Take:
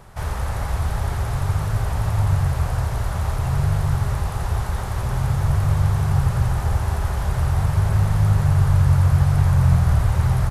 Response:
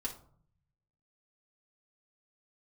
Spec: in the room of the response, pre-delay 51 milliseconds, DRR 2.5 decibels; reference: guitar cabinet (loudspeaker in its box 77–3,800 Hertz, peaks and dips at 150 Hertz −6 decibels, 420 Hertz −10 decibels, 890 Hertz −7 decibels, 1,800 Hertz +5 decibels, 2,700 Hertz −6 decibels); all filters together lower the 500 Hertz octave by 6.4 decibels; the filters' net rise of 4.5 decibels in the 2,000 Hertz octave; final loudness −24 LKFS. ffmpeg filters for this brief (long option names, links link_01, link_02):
-filter_complex "[0:a]equalizer=frequency=500:width_type=o:gain=-4.5,equalizer=frequency=2000:width_type=o:gain=3.5,asplit=2[link_01][link_02];[1:a]atrim=start_sample=2205,adelay=51[link_03];[link_02][link_03]afir=irnorm=-1:irlink=0,volume=-2.5dB[link_04];[link_01][link_04]amix=inputs=2:normalize=0,highpass=77,equalizer=frequency=150:width_type=q:width=4:gain=-6,equalizer=frequency=420:width_type=q:width=4:gain=-10,equalizer=frequency=890:width_type=q:width=4:gain=-7,equalizer=frequency=1800:width_type=q:width=4:gain=5,equalizer=frequency=2700:width_type=q:width=4:gain=-6,lowpass=frequency=3800:width=0.5412,lowpass=frequency=3800:width=1.3066,volume=-2.5dB"